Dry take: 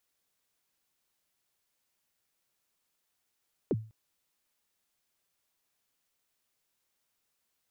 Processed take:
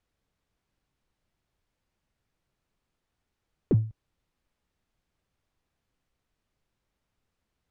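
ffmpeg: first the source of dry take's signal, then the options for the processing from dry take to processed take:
-f lavfi -i "aevalsrc='0.0794*pow(10,-3*t/0.36)*sin(2*PI*(500*0.038/log(110/500)*(exp(log(110/500)*min(t,0.038)/0.038)-1)+110*max(t-0.038,0)))':duration=0.2:sample_rate=44100"
-filter_complex "[0:a]aemphasis=mode=reproduction:type=riaa,asplit=2[link_01][link_02];[link_02]asoftclip=type=tanh:threshold=-32dB,volume=-9dB[link_03];[link_01][link_03]amix=inputs=2:normalize=0"

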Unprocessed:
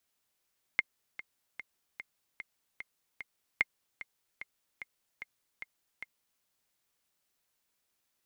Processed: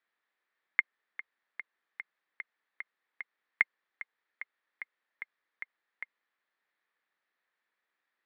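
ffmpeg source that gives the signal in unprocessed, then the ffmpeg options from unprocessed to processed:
-f lavfi -i "aevalsrc='pow(10,(-12-16*gte(mod(t,7*60/149),60/149))/20)*sin(2*PI*2120*mod(t,60/149))*exp(-6.91*mod(t,60/149)/0.03)':duration=5.63:sample_rate=44100"
-af "highpass=frequency=240:width=0.5412,highpass=frequency=240:width=1.3066,equalizer=frequency=260:width_type=q:width=4:gain=-7,equalizer=frequency=380:width_type=q:width=4:gain=-3,equalizer=frequency=630:width_type=q:width=4:gain=-3,equalizer=frequency=1200:width_type=q:width=4:gain=3,equalizer=frequency=1800:width_type=q:width=4:gain=10,equalizer=frequency=2900:width_type=q:width=4:gain=-6,lowpass=frequency=3400:width=0.5412,lowpass=frequency=3400:width=1.3066"

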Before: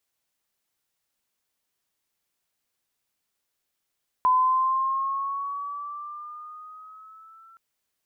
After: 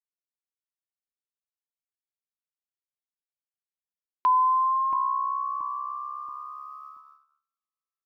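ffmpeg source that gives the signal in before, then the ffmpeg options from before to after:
-f lavfi -i "aevalsrc='pow(10,(-16-33*t/3.32)/20)*sin(2*PI*1010*3.32/(5*log(2)/12)*(exp(5*log(2)/12*t/3.32)-1))':duration=3.32:sample_rate=44100"
-filter_complex "[0:a]superequalizer=6b=2:7b=0.316:12b=2.82:14b=2.51,asplit=2[link_01][link_02];[link_02]adelay=679,lowpass=frequency=950:poles=1,volume=-7.5dB,asplit=2[link_03][link_04];[link_04]adelay=679,lowpass=frequency=950:poles=1,volume=0.48,asplit=2[link_05][link_06];[link_06]adelay=679,lowpass=frequency=950:poles=1,volume=0.48,asplit=2[link_07][link_08];[link_08]adelay=679,lowpass=frequency=950:poles=1,volume=0.48,asplit=2[link_09][link_10];[link_10]adelay=679,lowpass=frequency=950:poles=1,volume=0.48,asplit=2[link_11][link_12];[link_12]adelay=679,lowpass=frequency=950:poles=1,volume=0.48[link_13];[link_01][link_03][link_05][link_07][link_09][link_11][link_13]amix=inputs=7:normalize=0,agate=range=-44dB:threshold=-43dB:ratio=16:detection=peak"

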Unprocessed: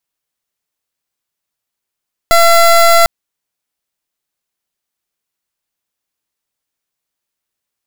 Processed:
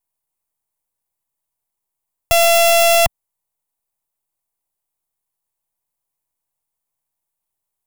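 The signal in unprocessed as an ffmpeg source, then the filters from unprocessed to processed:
-f lavfi -i "aevalsrc='0.447*(2*lt(mod(677*t,1),0.23)-1)':duration=0.75:sample_rate=44100"
-filter_complex "[0:a]equalizer=frequency=250:width_type=o:width=1:gain=-10,equalizer=frequency=500:width_type=o:width=1:gain=-5,equalizer=frequency=1000:width_type=o:width=1:gain=11,equalizer=frequency=2000:width_type=o:width=1:gain=-10,equalizer=frequency=4000:width_type=o:width=1:gain=-4,equalizer=frequency=8000:width_type=o:width=1:gain=3,acrossover=split=120|920|7500[link_01][link_02][link_03][link_04];[link_03]aeval=exprs='abs(val(0))':channel_layout=same[link_05];[link_01][link_02][link_05][link_04]amix=inputs=4:normalize=0"

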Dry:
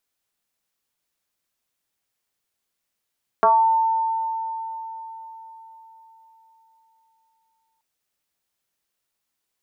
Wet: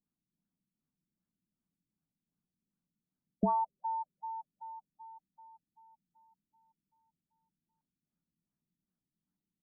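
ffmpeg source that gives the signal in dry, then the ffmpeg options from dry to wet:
-f lavfi -i "aevalsrc='0.266*pow(10,-3*t/4.41)*sin(2*PI*898*t+2*pow(10,-3*t/0.39)*sin(2*PI*0.26*898*t))':duration=4.38:sample_rate=44100"
-af "firequalizer=gain_entry='entry(110,0);entry(170,14);entry(460,-13)':delay=0.05:min_phase=1,afftfilt=real='re*lt(b*sr/1024,380*pow(1800/380,0.5+0.5*sin(2*PI*2.6*pts/sr)))':imag='im*lt(b*sr/1024,380*pow(1800/380,0.5+0.5*sin(2*PI*2.6*pts/sr)))':win_size=1024:overlap=0.75"

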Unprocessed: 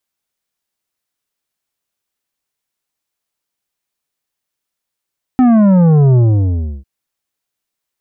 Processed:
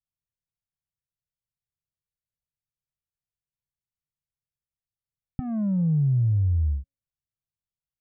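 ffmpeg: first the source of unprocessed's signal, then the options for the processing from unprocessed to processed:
-f lavfi -i "aevalsrc='0.447*clip((1.45-t)/0.68,0,1)*tanh(2.99*sin(2*PI*260*1.45/log(65/260)*(exp(log(65/260)*t/1.45)-1)))/tanh(2.99)':duration=1.45:sample_rate=44100"
-af "firequalizer=gain_entry='entry(150,0);entry(260,-27);entry(490,-19);entry(810,-25)':delay=0.05:min_phase=1,areverse,acompressor=threshold=-21dB:ratio=6,areverse,bandreject=frequency=275.5:width_type=h:width=4,bandreject=frequency=551:width_type=h:width=4,bandreject=frequency=826.5:width_type=h:width=4"

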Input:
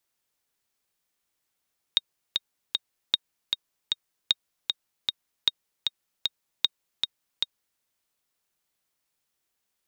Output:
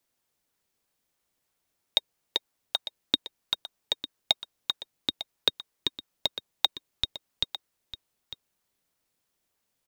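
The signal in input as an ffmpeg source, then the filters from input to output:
-f lavfi -i "aevalsrc='pow(10,(-6.5-4.5*gte(mod(t,3*60/154),60/154))/20)*sin(2*PI*3730*mod(t,60/154))*exp(-6.91*mod(t,60/154)/0.03)':duration=5.84:sample_rate=44100"
-filter_complex "[0:a]asplit=2[link_01][link_02];[link_02]acrusher=samples=22:mix=1:aa=0.000001:lfo=1:lforange=22:lforate=3.1,volume=-11dB[link_03];[link_01][link_03]amix=inputs=2:normalize=0,aecho=1:1:901:0.211"

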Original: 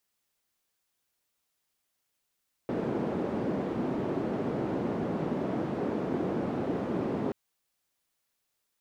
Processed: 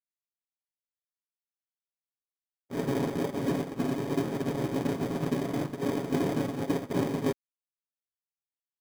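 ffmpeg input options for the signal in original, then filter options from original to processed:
-f lavfi -i "anoisesrc=color=white:duration=4.63:sample_rate=44100:seed=1,highpass=frequency=210,lowpass=frequency=310,volume=-4.3dB"
-filter_complex "[0:a]agate=range=-56dB:threshold=-30dB:ratio=16:detection=peak,aecho=1:1:7.2:0.64,asplit=2[link_01][link_02];[link_02]acrusher=samples=32:mix=1:aa=0.000001,volume=-4dB[link_03];[link_01][link_03]amix=inputs=2:normalize=0"

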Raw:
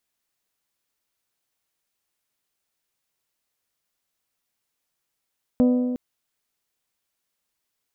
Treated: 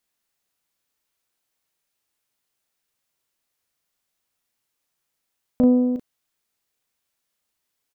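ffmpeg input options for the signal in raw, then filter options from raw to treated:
-f lavfi -i "aevalsrc='0.211*pow(10,-3*t/1.84)*sin(2*PI*249*t)+0.0841*pow(10,-3*t/1.495)*sin(2*PI*498*t)+0.0335*pow(10,-3*t/1.415)*sin(2*PI*597.6*t)+0.0133*pow(10,-3*t/1.323)*sin(2*PI*747*t)+0.00531*pow(10,-3*t/1.214)*sin(2*PI*996*t)+0.00211*pow(10,-3*t/1.135)*sin(2*PI*1245*t)':duration=0.36:sample_rate=44100"
-filter_complex "[0:a]asplit=2[link_01][link_02];[link_02]adelay=36,volume=-5dB[link_03];[link_01][link_03]amix=inputs=2:normalize=0"

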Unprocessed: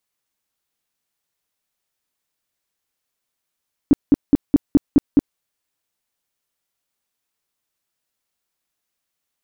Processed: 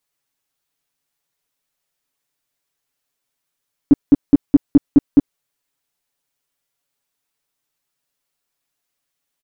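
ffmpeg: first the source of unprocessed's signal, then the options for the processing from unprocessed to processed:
-f lavfi -i "aevalsrc='0.473*sin(2*PI*285*mod(t,0.21))*lt(mod(t,0.21),6/285)':duration=1.47:sample_rate=44100"
-af "aecho=1:1:7.1:0.65"

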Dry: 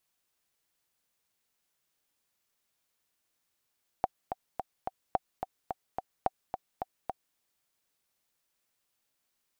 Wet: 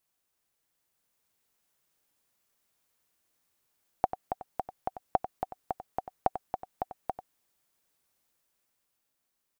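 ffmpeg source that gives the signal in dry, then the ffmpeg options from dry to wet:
-f lavfi -i "aevalsrc='pow(10,(-12.5-7.5*gte(mod(t,4*60/216),60/216))/20)*sin(2*PI*751*mod(t,60/216))*exp(-6.91*mod(t,60/216)/0.03)':duration=3.33:sample_rate=44100"
-af "equalizer=frequency=3600:width=0.56:gain=-3.5,dynaudnorm=framelen=120:gausssize=17:maxgain=4dB,aecho=1:1:93:0.266"

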